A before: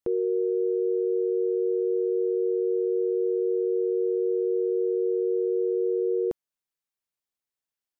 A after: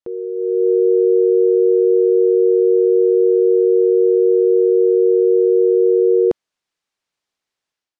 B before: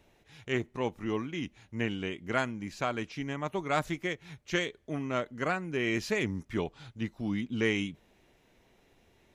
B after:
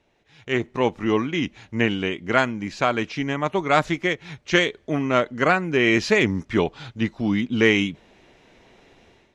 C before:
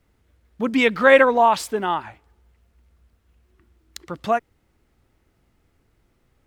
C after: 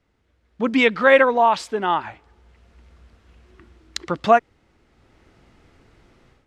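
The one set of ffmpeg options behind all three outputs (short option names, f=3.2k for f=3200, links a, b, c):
-af "lowpass=6k,lowshelf=f=140:g=-6,dynaudnorm=f=350:g=3:m=14dB,volume=-1dB"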